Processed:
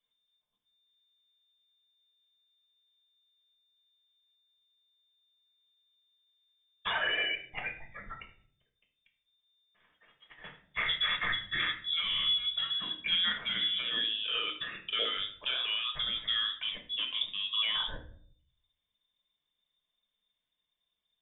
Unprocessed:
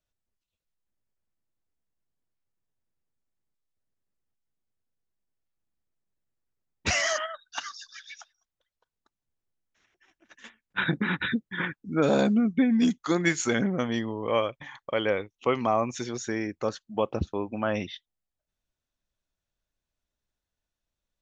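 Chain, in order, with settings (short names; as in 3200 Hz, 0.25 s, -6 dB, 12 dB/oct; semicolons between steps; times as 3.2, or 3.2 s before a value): block floating point 7-bit; soft clip -17 dBFS, distortion -18 dB; limiter -26 dBFS, peak gain reduction 8.5 dB; 14.54–16.6 low shelf 260 Hz +10.5 dB; inverted band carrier 3600 Hz; dynamic EQ 1300 Hz, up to +4 dB, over -43 dBFS, Q 0.75; treble ducked by the level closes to 2400 Hz, closed at -25.5 dBFS; reverb RT60 0.55 s, pre-delay 5 ms, DRR 2 dB; gain -1.5 dB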